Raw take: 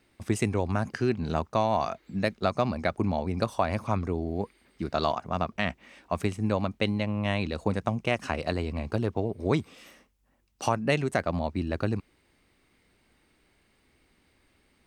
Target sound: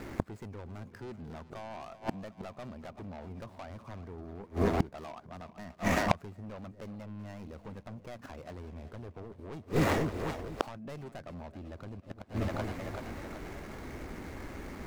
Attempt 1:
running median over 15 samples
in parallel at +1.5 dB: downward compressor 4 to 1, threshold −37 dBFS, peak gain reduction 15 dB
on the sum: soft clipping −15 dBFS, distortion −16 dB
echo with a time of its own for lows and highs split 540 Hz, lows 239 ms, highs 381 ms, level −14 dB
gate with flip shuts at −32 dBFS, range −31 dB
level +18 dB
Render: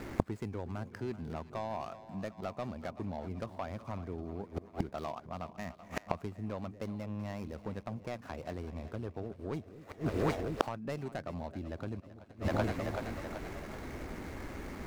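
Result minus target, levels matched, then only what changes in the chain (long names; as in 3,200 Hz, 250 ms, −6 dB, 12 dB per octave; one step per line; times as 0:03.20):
soft clipping: distortion −10 dB
change: soft clipping −26 dBFS, distortion −6 dB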